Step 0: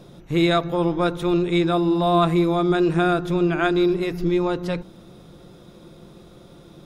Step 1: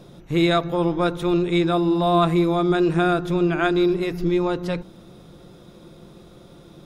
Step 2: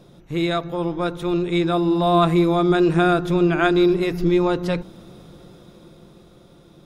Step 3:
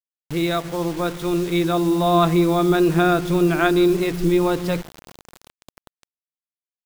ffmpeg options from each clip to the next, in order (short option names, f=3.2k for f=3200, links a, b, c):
-af anull
-af "dynaudnorm=f=300:g=11:m=11.5dB,volume=-3.5dB"
-af "acrusher=bits=5:mix=0:aa=0.000001"